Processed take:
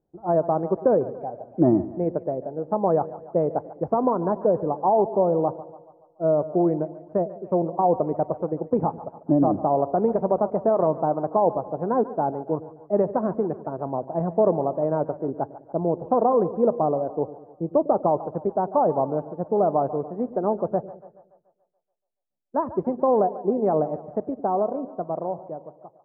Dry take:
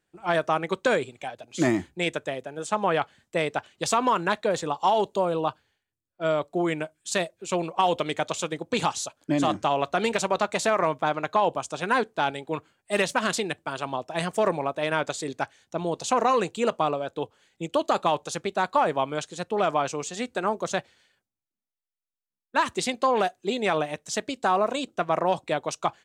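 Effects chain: fade out at the end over 2.04 s; inverse Chebyshev low-pass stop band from 3.5 kHz, stop band 70 dB; two-band feedback delay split 520 Hz, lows 103 ms, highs 143 ms, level -15 dB; trim +5 dB

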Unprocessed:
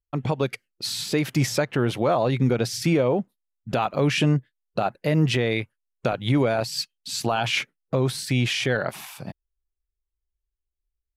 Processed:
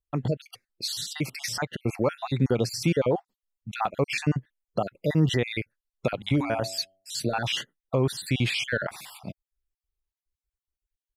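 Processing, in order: random holes in the spectrogram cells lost 43%; 6.16–7.45 s: de-hum 95.41 Hz, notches 8; trim -1 dB

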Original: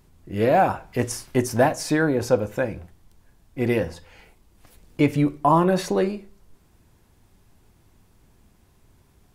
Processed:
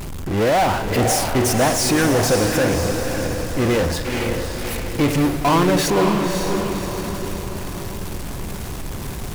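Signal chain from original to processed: power-law waveshaper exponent 0.35; echo that smears into a reverb 562 ms, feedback 51%, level -5 dB; trim -4.5 dB

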